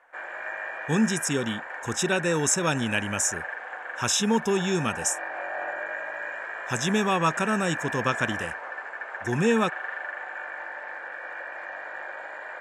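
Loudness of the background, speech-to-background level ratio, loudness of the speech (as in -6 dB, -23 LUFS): -34.0 LUFS, 8.0 dB, -26.0 LUFS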